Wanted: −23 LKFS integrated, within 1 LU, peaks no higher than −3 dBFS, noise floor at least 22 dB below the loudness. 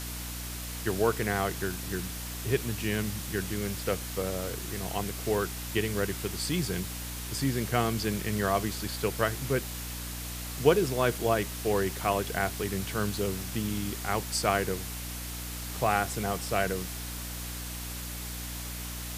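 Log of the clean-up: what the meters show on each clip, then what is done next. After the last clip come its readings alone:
mains hum 60 Hz; hum harmonics up to 300 Hz; level of the hum −37 dBFS; background noise floor −38 dBFS; target noise floor −53 dBFS; integrated loudness −31.0 LKFS; sample peak −7.0 dBFS; target loudness −23.0 LKFS
→ mains-hum notches 60/120/180/240/300 Hz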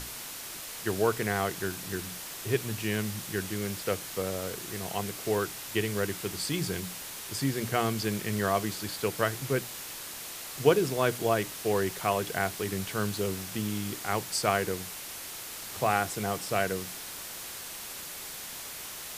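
mains hum none found; background noise floor −41 dBFS; target noise floor −54 dBFS
→ broadband denoise 13 dB, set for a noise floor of −41 dBFS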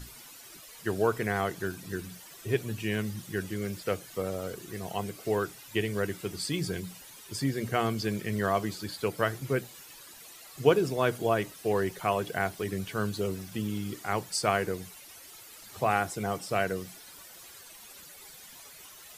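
background noise floor −50 dBFS; target noise floor −53 dBFS
→ broadband denoise 6 dB, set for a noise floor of −50 dBFS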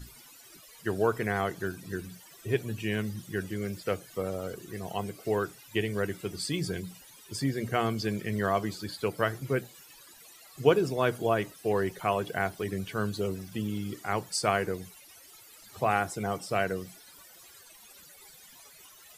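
background noise floor −54 dBFS; integrated loudness −31.0 LKFS; sample peak −7.5 dBFS; target loudness −23.0 LKFS
→ level +8 dB
brickwall limiter −3 dBFS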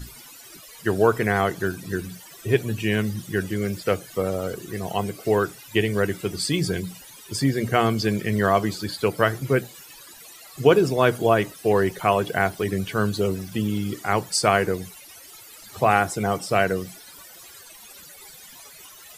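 integrated loudness −23.5 LKFS; sample peak −3.0 dBFS; background noise floor −46 dBFS

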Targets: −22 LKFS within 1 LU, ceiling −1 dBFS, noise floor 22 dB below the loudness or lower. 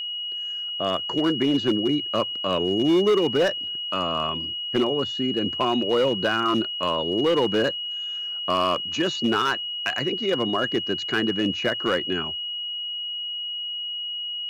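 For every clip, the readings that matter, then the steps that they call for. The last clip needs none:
share of clipped samples 1.2%; peaks flattened at −15.0 dBFS; interfering tone 2,900 Hz; level of the tone −28 dBFS; integrated loudness −24.0 LKFS; sample peak −15.0 dBFS; target loudness −22.0 LKFS
→ clipped peaks rebuilt −15 dBFS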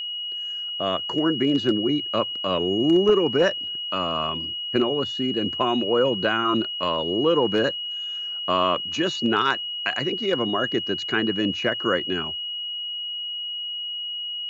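share of clipped samples 0.0%; interfering tone 2,900 Hz; level of the tone −28 dBFS
→ notch filter 2,900 Hz, Q 30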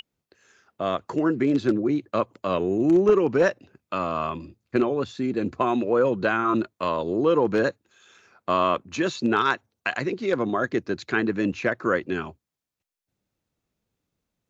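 interfering tone none found; integrated loudness −24.5 LKFS; sample peak −6.5 dBFS; target loudness −22.0 LKFS
→ level +2.5 dB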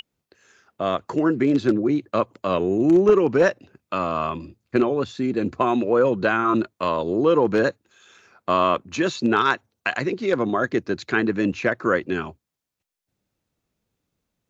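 integrated loudness −22.0 LKFS; sample peak −4.0 dBFS; background noise floor −84 dBFS

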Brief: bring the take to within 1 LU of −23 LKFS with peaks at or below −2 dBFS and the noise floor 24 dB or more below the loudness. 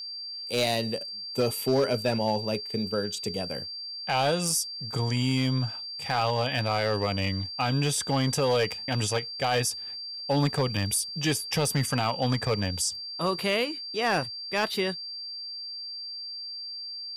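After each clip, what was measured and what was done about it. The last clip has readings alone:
share of clipped samples 0.6%; peaks flattened at −17.5 dBFS; interfering tone 4,700 Hz; level of the tone −35 dBFS; integrated loudness −28.0 LKFS; sample peak −17.5 dBFS; target loudness −23.0 LKFS
→ clipped peaks rebuilt −17.5 dBFS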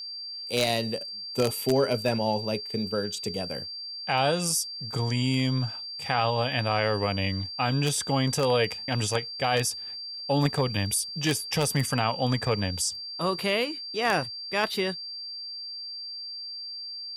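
share of clipped samples 0.0%; interfering tone 4,700 Hz; level of the tone −35 dBFS
→ notch filter 4,700 Hz, Q 30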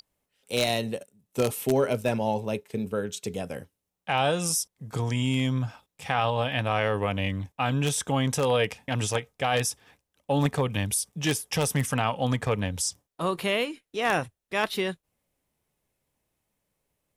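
interfering tone none found; integrated loudness −27.5 LKFS; sample peak −8.0 dBFS; target loudness −23.0 LKFS
→ level +4.5 dB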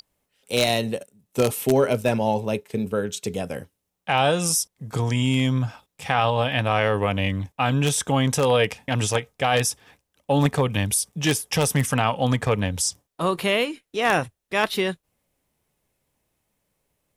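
integrated loudness −23.0 LKFS; sample peak −3.5 dBFS; background noise floor −80 dBFS

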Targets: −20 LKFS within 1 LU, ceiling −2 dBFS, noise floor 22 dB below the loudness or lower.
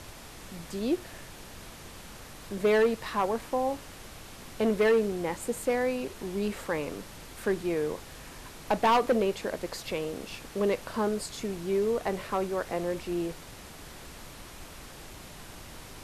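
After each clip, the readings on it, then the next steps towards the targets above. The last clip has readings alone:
share of clipped samples 0.6%; peaks flattened at −18.5 dBFS; background noise floor −47 dBFS; target noise floor −52 dBFS; integrated loudness −30.0 LKFS; sample peak −18.5 dBFS; target loudness −20.0 LKFS
→ clipped peaks rebuilt −18.5 dBFS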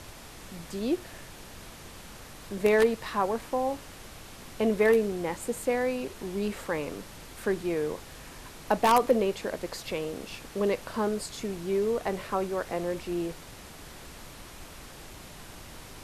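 share of clipped samples 0.0%; background noise floor −47 dBFS; target noise floor −51 dBFS
→ noise reduction from a noise print 6 dB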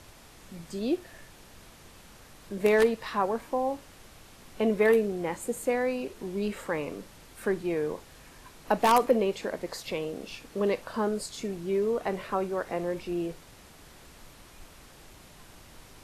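background noise floor −53 dBFS; integrated loudness −29.0 LKFS; sample peak −9.5 dBFS; target loudness −20.0 LKFS
→ level +9 dB
brickwall limiter −2 dBFS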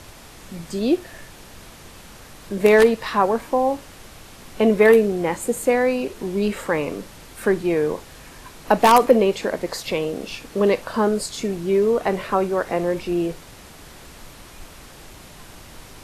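integrated loudness −20.5 LKFS; sample peak −2.0 dBFS; background noise floor −44 dBFS

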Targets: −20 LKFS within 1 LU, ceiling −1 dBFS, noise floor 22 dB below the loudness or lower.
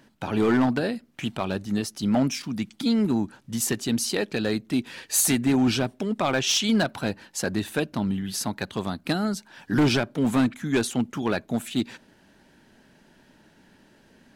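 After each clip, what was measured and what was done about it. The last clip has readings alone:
share of clipped samples 1.0%; peaks flattened at −15.5 dBFS; integrated loudness −25.5 LKFS; sample peak −15.5 dBFS; target loudness −20.0 LKFS
→ clipped peaks rebuilt −15.5 dBFS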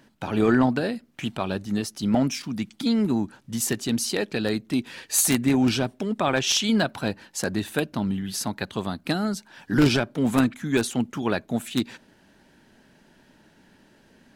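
share of clipped samples 0.0%; integrated loudness −25.0 LKFS; sample peak −6.5 dBFS; target loudness −20.0 LKFS
→ level +5 dB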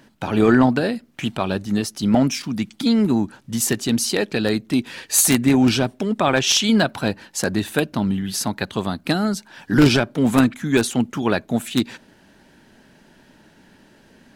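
integrated loudness −20.0 LKFS; sample peak −1.5 dBFS; background noise floor −54 dBFS

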